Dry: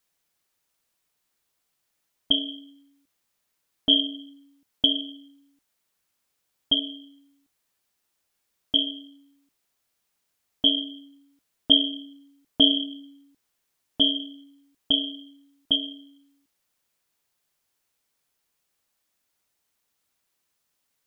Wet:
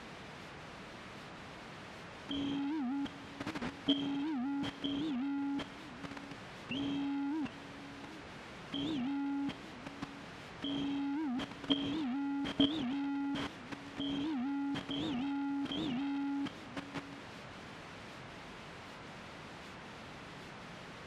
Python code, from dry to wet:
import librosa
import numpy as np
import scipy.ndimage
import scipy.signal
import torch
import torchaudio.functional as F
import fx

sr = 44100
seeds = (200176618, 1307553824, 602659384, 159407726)

y = fx.delta_mod(x, sr, bps=64000, step_db=-19.0)
y = scipy.signal.sosfilt(scipy.signal.butter(2, 2800.0, 'lowpass', fs=sr, output='sos'), y)
y = fx.high_shelf(y, sr, hz=2100.0, db=-6.0)
y = y + 10.0 ** (-13.5 / 20.0) * np.pad(y, (int(752 * sr / 1000.0), 0))[:len(y)]
y = fx.level_steps(y, sr, step_db=11)
y = scipy.signal.sosfilt(scipy.signal.butter(2, 41.0, 'highpass', fs=sr, output='sos'), y)
y = fx.peak_eq(y, sr, hz=170.0, db=7.0, octaves=1.4)
y = fx.record_warp(y, sr, rpm=78.0, depth_cents=250.0)
y = y * 10.0 ** (-6.5 / 20.0)